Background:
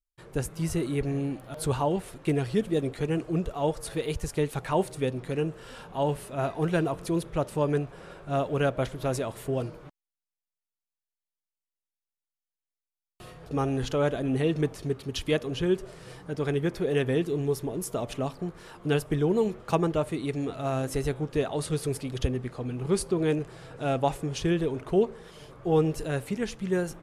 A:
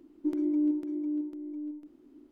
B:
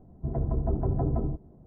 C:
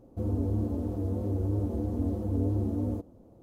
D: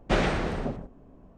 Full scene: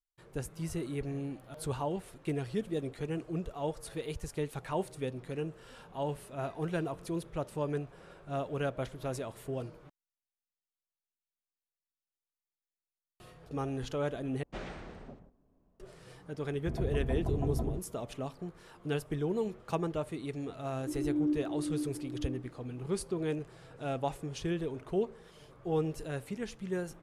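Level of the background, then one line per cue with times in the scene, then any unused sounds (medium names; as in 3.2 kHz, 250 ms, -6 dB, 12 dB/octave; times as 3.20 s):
background -8 dB
14.43 s: replace with D -18 dB
16.43 s: add B -5.5 dB
20.62 s: add A -3 dB + fade-in on the opening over 0.53 s
not used: C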